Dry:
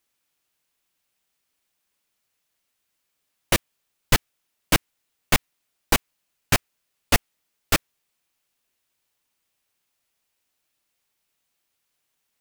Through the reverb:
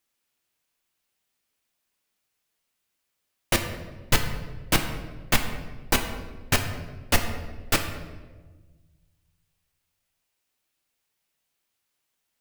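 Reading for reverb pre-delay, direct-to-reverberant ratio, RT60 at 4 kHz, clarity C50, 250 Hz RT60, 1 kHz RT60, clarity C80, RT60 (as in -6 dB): 8 ms, 5.0 dB, 0.90 s, 8.0 dB, 1.8 s, 1.2 s, 9.5 dB, 1.3 s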